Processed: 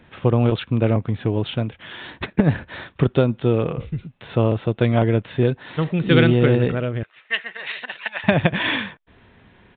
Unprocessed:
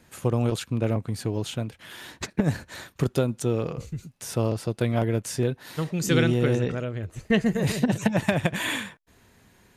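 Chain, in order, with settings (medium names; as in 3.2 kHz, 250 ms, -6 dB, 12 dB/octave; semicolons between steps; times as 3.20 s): 7.03–8.24 s: Butterworth band-pass 2.6 kHz, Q 0.67; resampled via 8 kHz; trim +6.5 dB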